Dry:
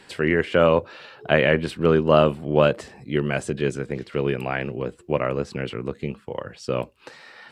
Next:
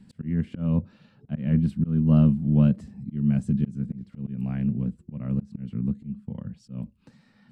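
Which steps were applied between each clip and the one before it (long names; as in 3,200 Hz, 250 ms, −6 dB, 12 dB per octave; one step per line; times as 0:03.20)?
drawn EQ curve 130 Hz 0 dB, 210 Hz +7 dB, 370 Hz −22 dB, 1,900 Hz −26 dB, 3,200 Hz −25 dB, 7,700 Hz −21 dB
volume swells 228 ms
level +5 dB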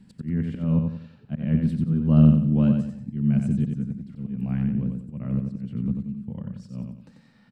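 repeating echo 91 ms, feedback 36%, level −5 dB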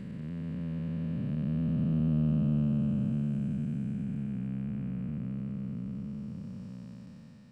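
spectrum smeared in time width 1,270 ms
one half of a high-frequency compander encoder only
level −5.5 dB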